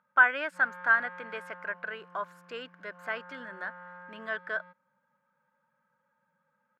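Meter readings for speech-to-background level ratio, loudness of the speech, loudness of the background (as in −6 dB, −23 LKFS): 18.5 dB, −30.0 LKFS, −48.5 LKFS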